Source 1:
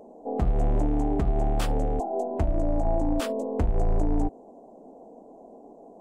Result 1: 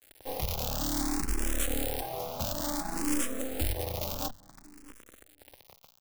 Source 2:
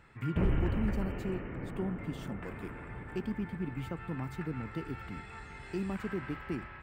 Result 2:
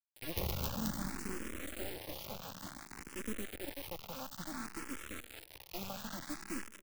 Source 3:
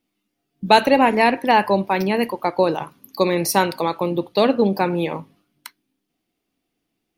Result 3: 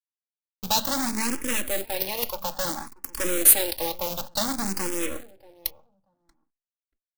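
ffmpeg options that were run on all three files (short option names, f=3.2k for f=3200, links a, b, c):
-filter_complex "[0:a]highpass=f=43:w=0.5412,highpass=f=43:w=1.3066,flanger=delay=2.7:depth=7.3:regen=-79:speed=0.28:shape=triangular,aecho=1:1:3.6:0.8,adynamicequalizer=threshold=0.0224:dfrequency=230:dqfactor=0.97:tfrequency=230:tqfactor=0.97:attack=5:release=100:ratio=0.375:range=2.5:mode=cutabove:tftype=bell,acrossover=split=720|3100[a][b][c];[a]acrusher=bits=4:mode=log:mix=0:aa=0.000001[d];[b]acompressor=threshold=-36dB:ratio=6[e];[d][e][c]amix=inputs=3:normalize=0,volume=21dB,asoftclip=hard,volume=-21dB,aemphasis=mode=production:type=75kf,acrusher=bits=4:dc=4:mix=0:aa=0.000001,asplit=2[f][g];[g]adelay=634,lowpass=f=960:p=1,volume=-20.5dB,asplit=2[h][i];[i]adelay=634,lowpass=f=960:p=1,volume=0.16[j];[h][j]amix=inputs=2:normalize=0[k];[f][k]amix=inputs=2:normalize=0,asplit=2[l][m];[m]afreqshift=0.57[n];[l][n]amix=inputs=2:normalize=1,volume=2.5dB"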